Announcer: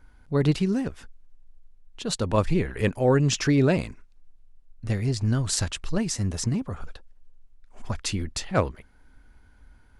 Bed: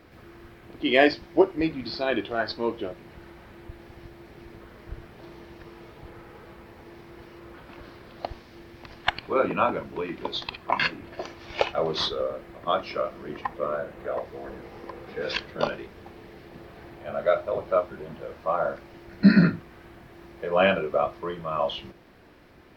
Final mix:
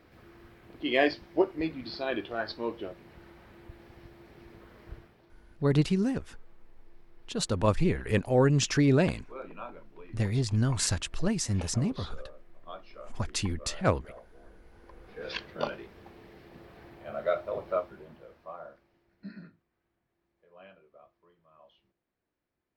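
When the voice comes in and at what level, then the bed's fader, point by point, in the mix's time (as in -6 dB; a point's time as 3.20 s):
5.30 s, -2.5 dB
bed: 4.94 s -6 dB
5.30 s -19 dB
14.66 s -19 dB
15.42 s -6 dB
17.72 s -6 dB
19.58 s -32.5 dB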